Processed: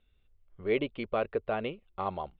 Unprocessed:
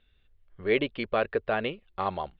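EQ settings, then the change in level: air absorption 220 m; bell 1700 Hz -9 dB 0.3 oct; -2.5 dB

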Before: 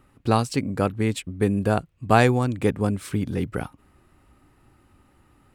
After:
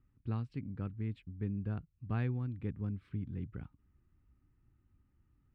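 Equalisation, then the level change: air absorption 400 m; passive tone stack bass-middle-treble 6-0-2; high shelf 2500 Hz -9 dB; +3.0 dB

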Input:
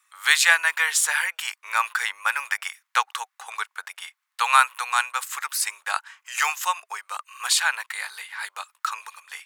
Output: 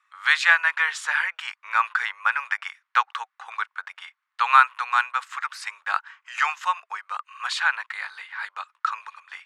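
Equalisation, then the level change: HPF 420 Hz 6 dB/oct; LPF 4000 Hz 12 dB/oct; bell 1300 Hz +7 dB 1.3 oct; -4.0 dB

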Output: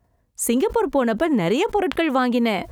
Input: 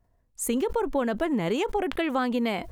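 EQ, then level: HPF 52 Hz; +6.5 dB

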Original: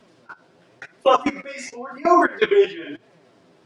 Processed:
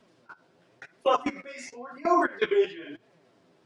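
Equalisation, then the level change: none; -7.5 dB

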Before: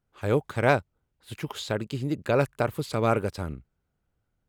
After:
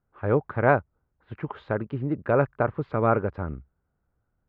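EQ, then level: ladder low-pass 1900 Hz, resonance 25%; bell 67 Hz +3.5 dB 0.29 oct; +7.0 dB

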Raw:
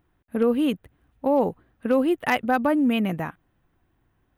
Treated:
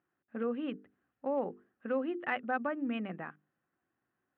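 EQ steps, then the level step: speaker cabinet 290–2400 Hz, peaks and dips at 300 Hz -5 dB, 450 Hz -6 dB, 650 Hz -6 dB, 940 Hz -9 dB, 2200 Hz -6 dB; notches 50/100/150/200/250/300/350/400/450 Hz; -6.0 dB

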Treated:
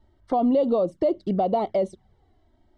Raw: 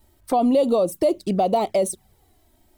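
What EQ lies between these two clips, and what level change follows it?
Butterworth band-stop 2500 Hz, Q 5.9; tape spacing loss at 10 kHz 41 dB; high shelf 2500 Hz +9.5 dB; -1.0 dB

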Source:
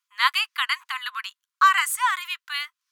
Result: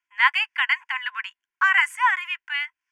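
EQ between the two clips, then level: LPF 3600 Hz 12 dB/oct; fixed phaser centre 810 Hz, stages 8; +6.0 dB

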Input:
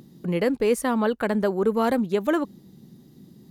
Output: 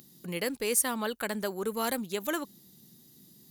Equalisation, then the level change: pre-emphasis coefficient 0.9; +8.0 dB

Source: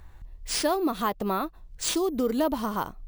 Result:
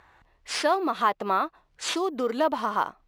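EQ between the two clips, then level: band-pass 1400 Hz, Q 0.65; +6.0 dB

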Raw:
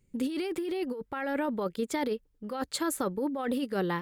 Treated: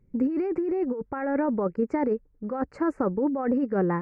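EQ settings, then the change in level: Butterworth band-stop 3500 Hz, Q 1.1; tape spacing loss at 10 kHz 45 dB; +7.5 dB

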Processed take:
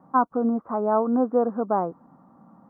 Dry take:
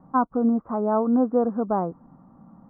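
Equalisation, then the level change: HPF 230 Hz 6 dB/oct; low shelf 320 Hz -3.5 dB; +2.5 dB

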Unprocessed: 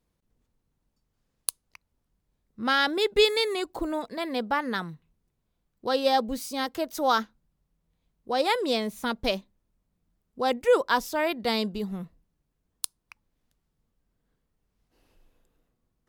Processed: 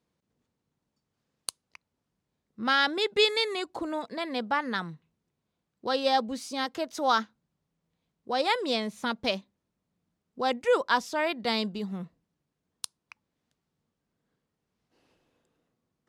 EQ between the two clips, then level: dynamic EQ 400 Hz, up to -4 dB, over -36 dBFS, Q 1; BPF 120–7600 Hz; 0.0 dB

